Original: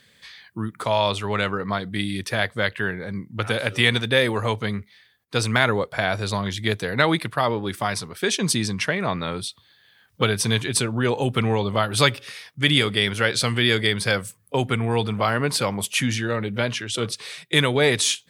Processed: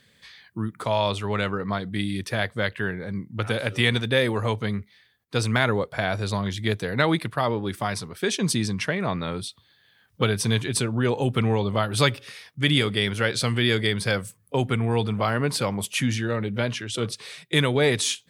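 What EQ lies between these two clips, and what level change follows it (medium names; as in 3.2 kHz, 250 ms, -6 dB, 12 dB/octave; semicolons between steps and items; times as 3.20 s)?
bass shelf 500 Hz +4.5 dB; -4.0 dB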